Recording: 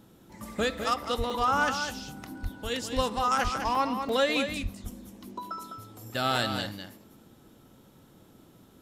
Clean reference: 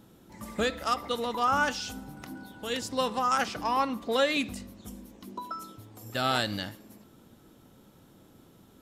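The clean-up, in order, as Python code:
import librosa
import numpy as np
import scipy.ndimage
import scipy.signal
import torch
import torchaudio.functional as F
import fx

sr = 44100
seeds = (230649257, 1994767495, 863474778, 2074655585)

y = fx.fix_declip(x, sr, threshold_db=-16.5)
y = fx.fix_deplosive(y, sr, at_s=(1.17, 2.42, 2.95, 3.43, 4.62))
y = fx.fix_interpolate(y, sr, at_s=(0.84, 1.3, 3.75, 4.09, 4.91), length_ms=3.2)
y = fx.fix_echo_inverse(y, sr, delay_ms=204, level_db=-7.5)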